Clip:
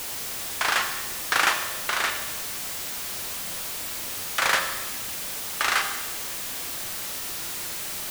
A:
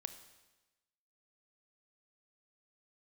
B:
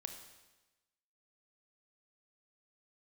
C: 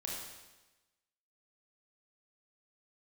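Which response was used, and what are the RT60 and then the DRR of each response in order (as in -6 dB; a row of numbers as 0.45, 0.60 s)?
B; 1.1, 1.1, 1.1 s; 9.5, 5.0, -3.5 dB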